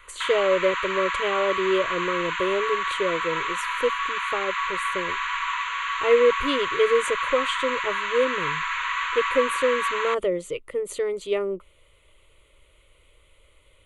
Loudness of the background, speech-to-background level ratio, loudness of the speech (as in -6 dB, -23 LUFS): -26.5 LUFS, 0.5 dB, -26.0 LUFS